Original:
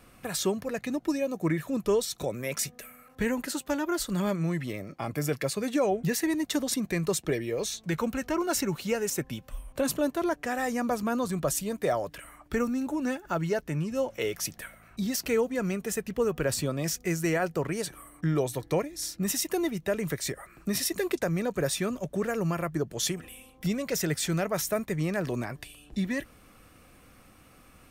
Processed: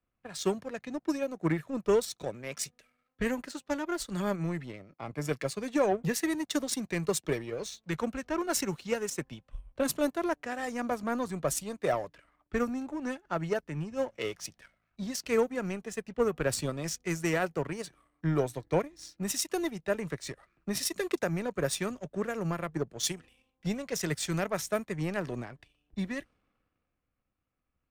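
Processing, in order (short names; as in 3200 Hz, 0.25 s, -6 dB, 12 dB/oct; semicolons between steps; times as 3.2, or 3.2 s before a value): low-pass opened by the level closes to 2700 Hz, open at -23 dBFS; power-law curve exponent 1.4; three-band expander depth 40%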